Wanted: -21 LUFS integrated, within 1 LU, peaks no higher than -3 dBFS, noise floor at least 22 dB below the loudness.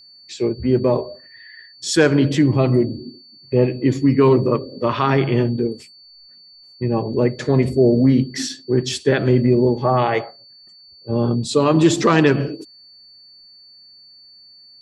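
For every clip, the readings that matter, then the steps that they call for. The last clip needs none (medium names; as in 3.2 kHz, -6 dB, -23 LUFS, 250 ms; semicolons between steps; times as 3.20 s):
steady tone 4.5 kHz; tone level -44 dBFS; loudness -18.0 LUFS; peak level -2.0 dBFS; loudness target -21.0 LUFS
-> band-stop 4.5 kHz, Q 30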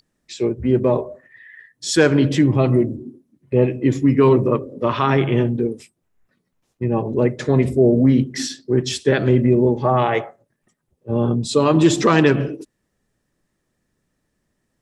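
steady tone not found; loudness -18.0 LUFS; peak level -2.5 dBFS; loudness target -21.0 LUFS
-> trim -3 dB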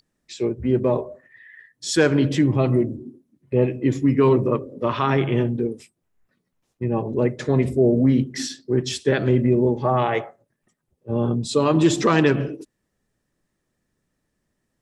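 loudness -21.0 LUFS; peak level -5.5 dBFS; noise floor -76 dBFS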